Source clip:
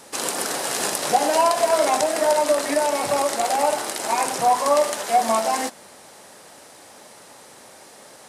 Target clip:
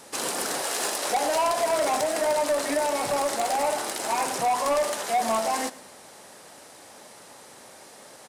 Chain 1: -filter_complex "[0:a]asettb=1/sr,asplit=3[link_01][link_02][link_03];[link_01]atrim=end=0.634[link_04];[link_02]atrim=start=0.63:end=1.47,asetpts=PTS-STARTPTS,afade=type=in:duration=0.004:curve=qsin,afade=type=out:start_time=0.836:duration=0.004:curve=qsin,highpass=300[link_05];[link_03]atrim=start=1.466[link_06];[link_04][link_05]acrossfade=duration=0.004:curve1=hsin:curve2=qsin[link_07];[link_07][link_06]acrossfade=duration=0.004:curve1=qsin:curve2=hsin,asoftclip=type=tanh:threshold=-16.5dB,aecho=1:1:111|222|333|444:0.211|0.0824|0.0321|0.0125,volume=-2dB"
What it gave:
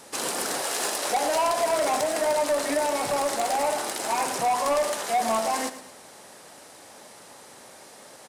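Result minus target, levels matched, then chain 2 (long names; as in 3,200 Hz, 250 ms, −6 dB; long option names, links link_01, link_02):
echo-to-direct +6.5 dB
-filter_complex "[0:a]asettb=1/sr,asplit=3[link_01][link_02][link_03];[link_01]atrim=end=0.634[link_04];[link_02]atrim=start=0.63:end=1.47,asetpts=PTS-STARTPTS,afade=type=in:duration=0.004:curve=qsin,afade=type=out:start_time=0.836:duration=0.004:curve=qsin,highpass=300[link_05];[link_03]atrim=start=1.466[link_06];[link_04][link_05]acrossfade=duration=0.004:curve1=hsin:curve2=qsin[link_07];[link_07][link_06]acrossfade=duration=0.004:curve1=qsin:curve2=hsin,asoftclip=type=tanh:threshold=-16.5dB,aecho=1:1:111|222|333:0.1|0.039|0.0152,volume=-2dB"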